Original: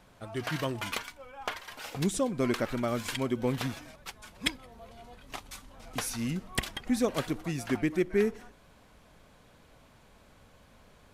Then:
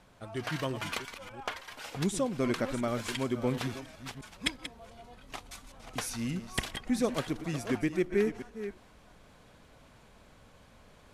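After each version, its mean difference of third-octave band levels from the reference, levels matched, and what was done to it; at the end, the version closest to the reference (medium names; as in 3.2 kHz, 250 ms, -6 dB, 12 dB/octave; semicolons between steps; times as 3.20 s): 2.0 dB: chunks repeated in reverse 351 ms, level -11 dB; low-pass 12 kHz 12 dB/octave; reverse; upward compressor, threshold -50 dBFS; reverse; trim -1.5 dB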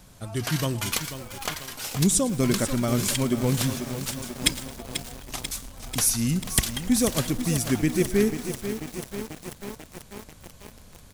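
7.5 dB: tone controls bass +9 dB, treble +14 dB; on a send: feedback delay 110 ms, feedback 46%, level -20 dB; on the sum: bit-crushed delay 490 ms, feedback 80%, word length 6-bit, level -9 dB; trim +1.5 dB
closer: first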